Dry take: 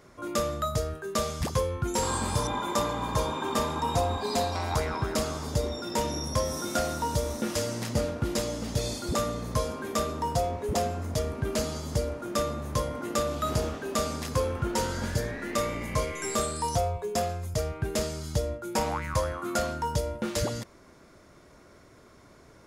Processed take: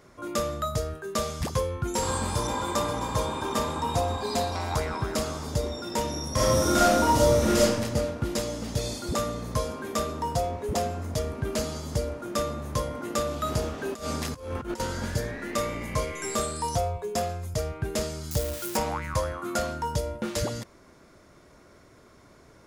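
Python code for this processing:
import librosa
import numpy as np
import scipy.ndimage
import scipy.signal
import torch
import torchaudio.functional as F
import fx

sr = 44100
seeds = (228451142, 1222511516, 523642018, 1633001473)

y = fx.echo_throw(x, sr, start_s=1.47, length_s=0.99, ms=530, feedback_pct=70, wet_db=-10.0)
y = fx.reverb_throw(y, sr, start_s=6.31, length_s=1.29, rt60_s=1.2, drr_db=-8.0)
y = fx.over_compress(y, sr, threshold_db=-32.0, ratio=-0.5, at=(13.78, 14.8))
y = fx.crossing_spikes(y, sr, level_db=-23.0, at=(18.31, 18.77))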